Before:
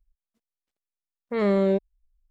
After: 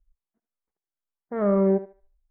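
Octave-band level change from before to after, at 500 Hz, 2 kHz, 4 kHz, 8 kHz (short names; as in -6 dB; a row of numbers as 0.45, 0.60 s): +0.5 dB, -8.0 dB, under -25 dB, n/a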